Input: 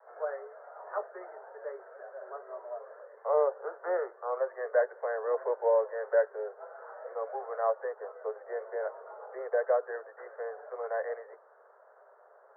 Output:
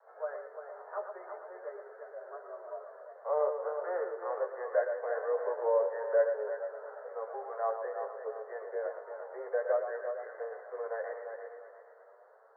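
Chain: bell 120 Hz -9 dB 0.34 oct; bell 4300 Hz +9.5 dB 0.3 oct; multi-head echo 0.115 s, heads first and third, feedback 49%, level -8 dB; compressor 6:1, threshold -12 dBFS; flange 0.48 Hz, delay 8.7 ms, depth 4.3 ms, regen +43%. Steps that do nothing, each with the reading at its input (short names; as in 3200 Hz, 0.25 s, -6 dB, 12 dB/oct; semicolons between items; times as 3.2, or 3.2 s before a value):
bell 120 Hz: input band starts at 340 Hz; bell 4300 Hz: input band ends at 1900 Hz; compressor, threshold -12 dBFS: input peak -14.0 dBFS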